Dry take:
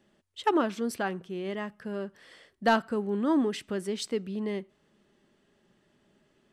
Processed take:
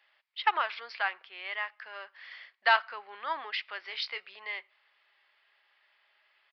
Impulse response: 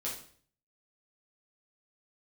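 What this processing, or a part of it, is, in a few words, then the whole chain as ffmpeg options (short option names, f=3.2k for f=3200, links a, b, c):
musical greeting card: -filter_complex "[0:a]aresample=11025,aresample=44100,highpass=f=840:w=0.5412,highpass=f=840:w=1.3066,equalizer=f=2.2k:t=o:w=0.53:g=9,asettb=1/sr,asplit=3[a][b][c];[a]atrim=end=3.804[d];[b]atrim=start=3.8:end=4.38,asetpts=PTS-STARTPTS,afade=t=in:d=0.004:c=qsin,afade=t=out:st=0.576:d=0.004:c=qsin,asplit=2[e][f];[f]adelay=21,volume=-9dB[g];[e][g]amix=inputs=2:normalize=0,atrim=end_sample=25578[h];[c]atrim=start=4.376[i];[d][h]acrossfade=d=0.004:c1=hsin:c2=qsin[j];[j][i]acrossfade=d=0.004:c1=qsin:c2=hsin,volume=2.5dB"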